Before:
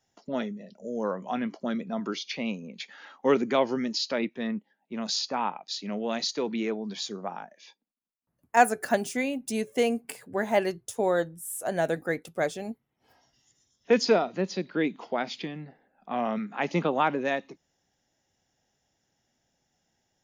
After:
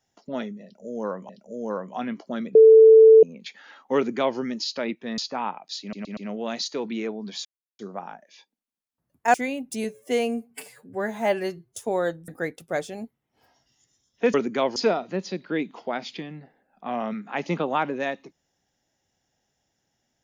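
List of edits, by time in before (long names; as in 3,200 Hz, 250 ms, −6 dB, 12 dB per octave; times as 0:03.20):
0:00.63–0:01.29: repeat, 2 plays
0:01.89–0:02.57: beep over 443 Hz −7.5 dBFS
0:03.30–0:03.72: duplicate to 0:14.01
0:04.52–0:05.17: remove
0:05.80: stutter 0.12 s, 4 plays
0:07.08: splice in silence 0.34 s
0:08.63–0:09.10: remove
0:09.60–0:10.88: time-stretch 1.5×
0:11.40–0:11.95: remove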